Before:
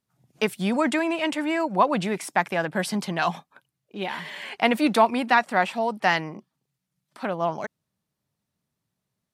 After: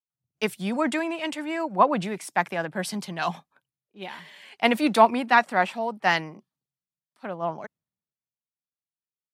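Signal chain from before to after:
multiband upward and downward expander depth 70%
level −2.5 dB

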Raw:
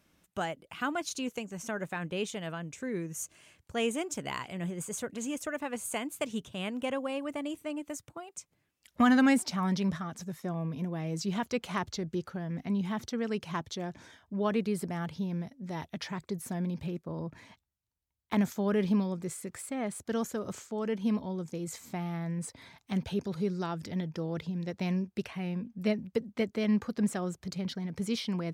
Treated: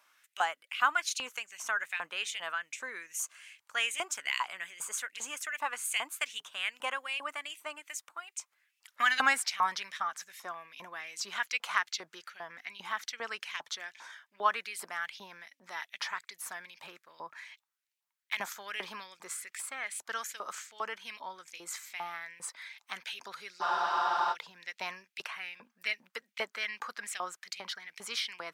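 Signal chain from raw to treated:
auto-filter high-pass saw up 2.5 Hz 910–2,700 Hz
frozen spectrum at 0:23.64, 0.69 s
level +2.5 dB

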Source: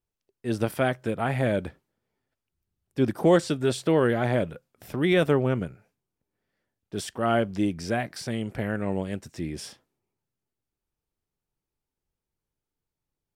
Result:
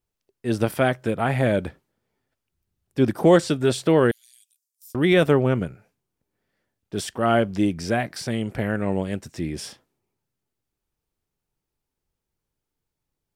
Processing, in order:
0:04.11–0:04.95: inverse Chebyshev high-pass filter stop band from 1,000 Hz, stop band 80 dB
level +4 dB

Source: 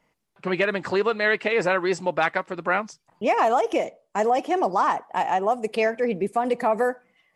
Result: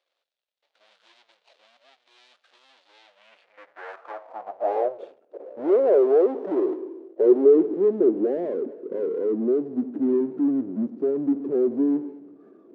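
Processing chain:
running median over 25 samples
power curve on the samples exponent 0.5
band-pass filter sweep 1,000 Hz → 400 Hz, 0:03.77–0:04.98
wrong playback speed 78 rpm record played at 45 rpm
high-pass filter sweep 3,700 Hz → 360 Hz, 0:03.03–0:05.20

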